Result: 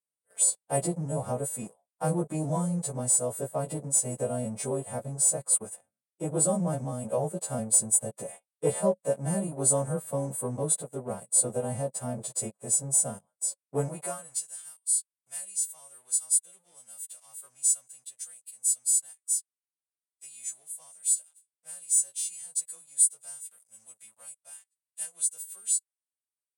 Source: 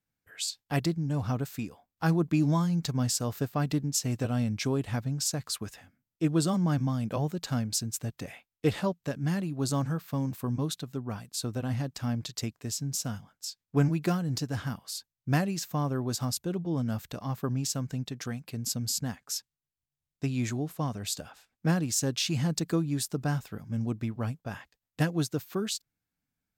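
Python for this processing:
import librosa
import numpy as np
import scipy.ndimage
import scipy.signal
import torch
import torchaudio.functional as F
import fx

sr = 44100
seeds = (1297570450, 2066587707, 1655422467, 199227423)

y = fx.freq_snap(x, sr, grid_st=2)
y = fx.leveller(y, sr, passes=3)
y = fx.rider(y, sr, range_db=3, speed_s=2.0)
y = fx.curve_eq(y, sr, hz=(140.0, 200.0, 290.0, 550.0, 1500.0, 3200.0, 5500.0, 9300.0, 13000.0), db=(0, -3, -17, -2, -22, -27, -29, 1, -24))
y = fx.filter_sweep_highpass(y, sr, from_hz=340.0, to_hz=3500.0, start_s=13.8, end_s=14.48, q=0.91)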